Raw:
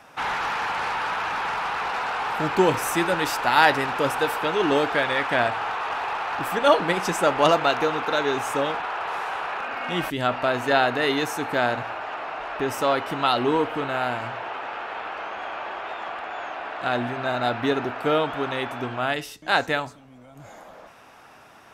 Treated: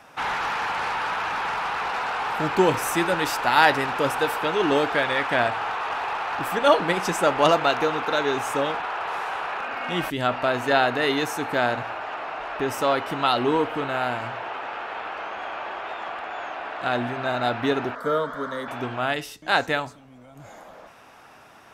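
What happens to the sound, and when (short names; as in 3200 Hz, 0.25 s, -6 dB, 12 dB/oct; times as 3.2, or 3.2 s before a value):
17.95–18.68 fixed phaser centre 520 Hz, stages 8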